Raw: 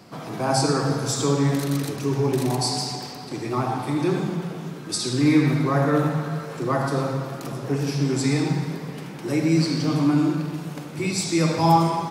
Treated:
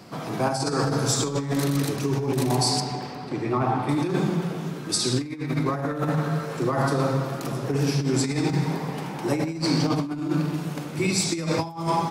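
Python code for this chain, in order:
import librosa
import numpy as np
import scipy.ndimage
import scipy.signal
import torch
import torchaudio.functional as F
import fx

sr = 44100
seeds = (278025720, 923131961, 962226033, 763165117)

y = fx.bass_treble(x, sr, bass_db=0, treble_db=-14, at=(2.8, 3.89))
y = fx.over_compress(y, sr, threshold_db=-23.0, ratio=-0.5)
y = fx.peak_eq(y, sr, hz=850.0, db=8.5, octaves=0.75, at=(8.65, 9.98))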